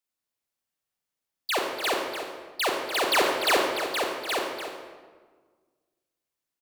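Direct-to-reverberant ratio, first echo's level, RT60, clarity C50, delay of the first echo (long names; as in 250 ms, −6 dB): 0.0 dB, −9.5 dB, 1.5 s, 2.0 dB, 294 ms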